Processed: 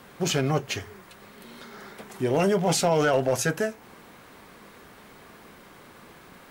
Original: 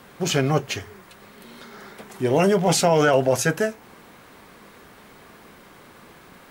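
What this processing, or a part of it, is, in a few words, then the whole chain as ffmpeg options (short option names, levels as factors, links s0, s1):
clipper into limiter: -af "asoftclip=type=hard:threshold=0.282,alimiter=limit=0.211:level=0:latency=1:release=212,volume=0.841"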